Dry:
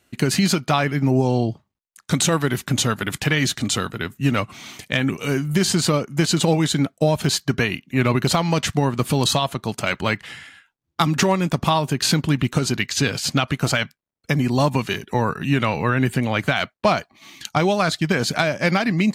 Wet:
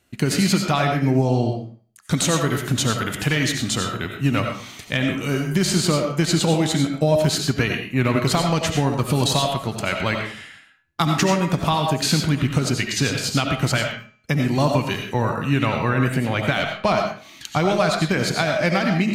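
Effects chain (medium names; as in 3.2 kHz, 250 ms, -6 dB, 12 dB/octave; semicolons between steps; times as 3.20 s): bass shelf 110 Hz +5 dB; de-hum 212.9 Hz, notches 35; reverberation RT60 0.40 s, pre-delay 50 ms, DRR 3 dB; trim -2 dB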